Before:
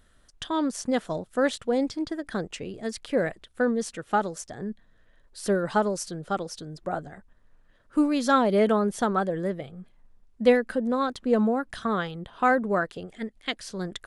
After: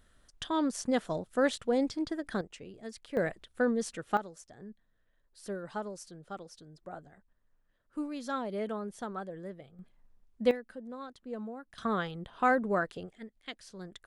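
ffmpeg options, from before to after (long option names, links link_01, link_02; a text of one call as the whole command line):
ffmpeg -i in.wav -af "asetnsamples=nb_out_samples=441:pad=0,asendcmd='2.41 volume volume -11.5dB;3.17 volume volume -4dB;4.17 volume volume -14dB;9.79 volume volume -6.5dB;10.51 volume volume -17.5dB;11.78 volume volume -4.5dB;13.09 volume volume -12.5dB',volume=-3.5dB" out.wav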